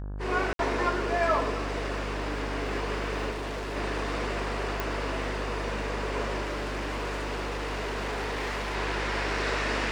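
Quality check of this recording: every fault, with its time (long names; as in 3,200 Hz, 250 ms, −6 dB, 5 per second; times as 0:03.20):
mains buzz 50 Hz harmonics 34 −35 dBFS
0:00.53–0:00.59: drop-out 62 ms
0:03.30–0:03.77: clipping −31 dBFS
0:04.80: click
0:06.43–0:08.76: clipping −28.5 dBFS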